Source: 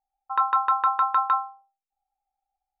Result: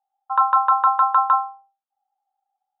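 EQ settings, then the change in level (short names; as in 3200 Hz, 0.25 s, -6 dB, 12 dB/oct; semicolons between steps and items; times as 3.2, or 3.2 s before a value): Chebyshev band-pass 340–3300 Hz, order 4; dynamic EQ 530 Hz, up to +6 dB, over -47 dBFS, Q 3.8; fixed phaser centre 920 Hz, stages 4; +7.0 dB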